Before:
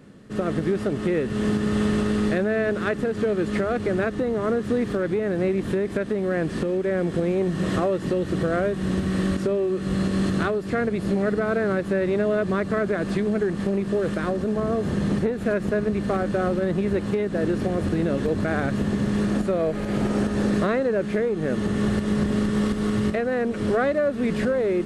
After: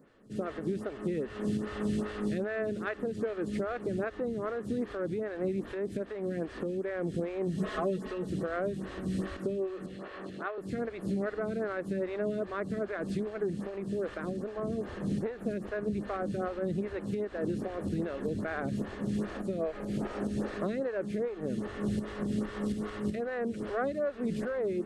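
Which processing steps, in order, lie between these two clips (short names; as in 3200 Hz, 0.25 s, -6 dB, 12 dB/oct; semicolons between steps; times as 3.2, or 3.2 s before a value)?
7.57–8.3 comb 4.7 ms, depth 79%; 9.86–10.58 three-band isolator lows -16 dB, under 380 Hz, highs -15 dB, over 3500 Hz; photocell phaser 2.5 Hz; gain -7.5 dB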